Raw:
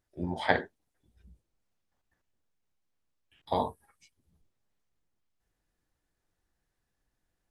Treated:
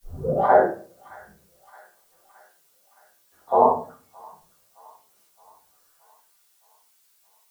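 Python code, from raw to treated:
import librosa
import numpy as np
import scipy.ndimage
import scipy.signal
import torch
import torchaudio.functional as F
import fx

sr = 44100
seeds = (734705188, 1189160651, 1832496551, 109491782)

p1 = fx.tape_start_head(x, sr, length_s=0.44)
p2 = fx.high_shelf_res(p1, sr, hz=1800.0, db=-11.0, q=3.0)
p3 = fx.notch(p2, sr, hz=930.0, q=13.0)
p4 = fx.over_compress(p3, sr, threshold_db=-33.0, ratio=-1.0)
p5 = p3 + F.gain(torch.from_numpy(p4), -1.0).numpy()
p6 = fx.filter_sweep_bandpass(p5, sr, from_hz=650.0, to_hz=8000.0, start_s=5.6, end_s=6.62, q=1.2)
p7 = fx.dmg_noise_colour(p6, sr, seeds[0], colour='blue', level_db=-71.0)
p8 = fx.chorus_voices(p7, sr, voices=2, hz=0.48, base_ms=10, depth_ms=5.0, mix_pct=55)
p9 = fx.echo_wet_highpass(p8, sr, ms=619, feedback_pct=56, hz=1700.0, wet_db=-14.5)
p10 = fx.room_shoebox(p9, sr, seeds[1], volume_m3=31.0, walls='mixed', distance_m=1.0)
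y = F.gain(torch.from_numpy(p10), 7.0).numpy()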